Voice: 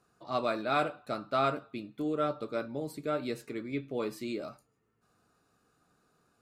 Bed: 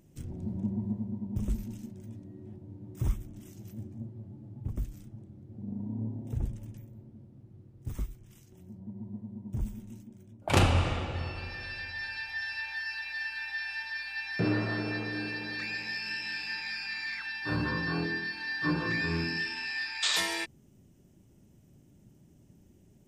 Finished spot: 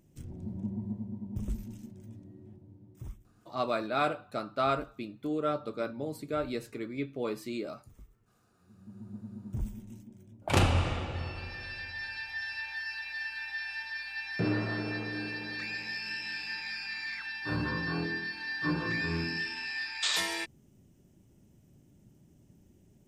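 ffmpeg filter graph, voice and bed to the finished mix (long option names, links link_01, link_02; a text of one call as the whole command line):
ffmpeg -i stem1.wav -i stem2.wav -filter_complex "[0:a]adelay=3250,volume=0dB[link_01];[1:a]volume=14dB,afade=type=out:start_time=2.28:duration=0.95:silence=0.16788,afade=type=in:start_time=8.59:duration=0.65:silence=0.133352[link_02];[link_01][link_02]amix=inputs=2:normalize=0" out.wav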